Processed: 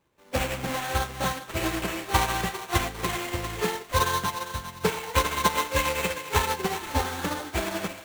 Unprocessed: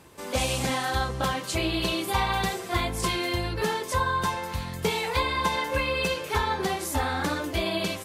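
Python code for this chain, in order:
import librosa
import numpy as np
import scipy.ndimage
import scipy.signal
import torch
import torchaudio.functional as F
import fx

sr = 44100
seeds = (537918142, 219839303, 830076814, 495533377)

y = fx.sample_hold(x, sr, seeds[0], rate_hz=5000.0, jitter_pct=20)
y = fx.echo_thinned(y, sr, ms=401, feedback_pct=57, hz=710.0, wet_db=-4.0)
y = fx.upward_expand(y, sr, threshold_db=-37.0, expansion=2.5)
y = F.gain(torch.from_numpy(y), 4.5).numpy()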